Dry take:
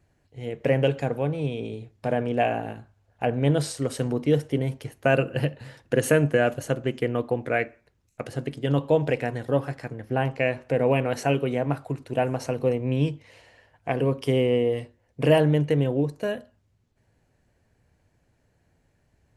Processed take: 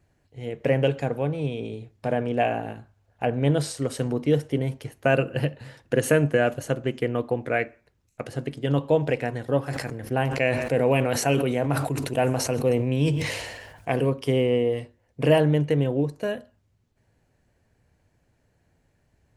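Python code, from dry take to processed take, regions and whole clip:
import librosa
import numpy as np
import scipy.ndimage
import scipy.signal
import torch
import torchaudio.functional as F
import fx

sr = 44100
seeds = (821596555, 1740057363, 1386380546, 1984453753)

y = fx.chain(x, sr, fx.high_shelf(hz=5500.0, db=9.5),
    fx.echo_single(ms=132, db=-24.0),
    fx.sustainer(db_per_s=40.0), at=(9.66, 14.1))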